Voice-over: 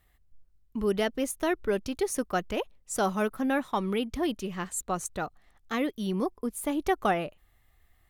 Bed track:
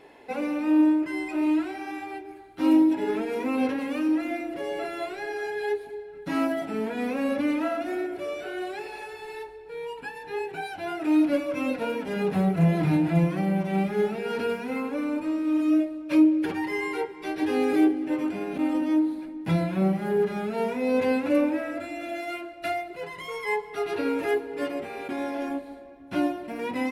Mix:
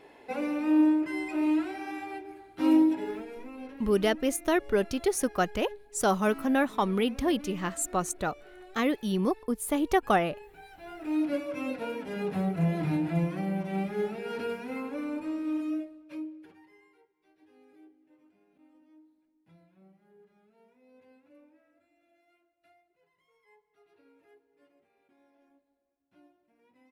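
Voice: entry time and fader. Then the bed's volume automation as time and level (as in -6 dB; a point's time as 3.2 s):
3.05 s, +2.0 dB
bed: 2.85 s -2.5 dB
3.51 s -17.5 dB
10.58 s -17.5 dB
11.27 s -6 dB
15.5 s -6 dB
17.02 s -36 dB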